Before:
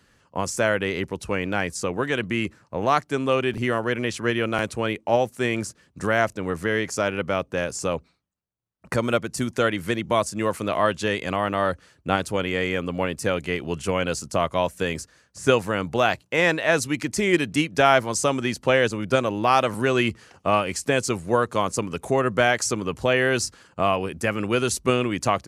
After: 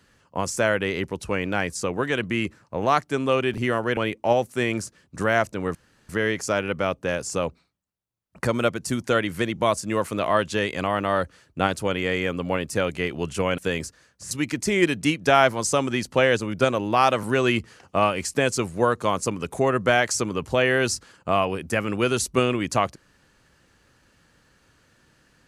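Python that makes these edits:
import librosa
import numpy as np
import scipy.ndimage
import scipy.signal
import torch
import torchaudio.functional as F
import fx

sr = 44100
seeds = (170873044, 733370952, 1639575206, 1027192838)

y = fx.edit(x, sr, fx.cut(start_s=3.97, length_s=0.83),
    fx.insert_room_tone(at_s=6.58, length_s=0.34),
    fx.cut(start_s=14.07, length_s=0.66),
    fx.cut(start_s=15.46, length_s=1.36), tone=tone)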